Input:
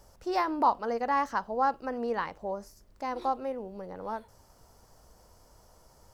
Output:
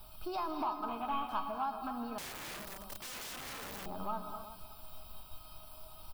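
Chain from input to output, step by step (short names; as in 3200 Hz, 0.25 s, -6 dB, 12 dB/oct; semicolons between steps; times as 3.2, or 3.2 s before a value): 0.88–1.29 CVSD 16 kbps; bell 520 Hz +4.5 dB 2.3 oct; in parallel at -9 dB: requantised 8-bit, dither triangular; on the sum: resonator 630 Hz, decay 0.26 s, harmonics all, mix 90%; compressor 6:1, threshold -46 dBFS, peak gain reduction 15 dB; on a send: echo 0.375 s -14.5 dB; on the sum: non-linear reverb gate 0.29 s rising, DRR 5.5 dB; sample leveller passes 1; fixed phaser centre 1900 Hz, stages 6; 2.18–3.86 wrapped overs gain 52 dB; gain +12.5 dB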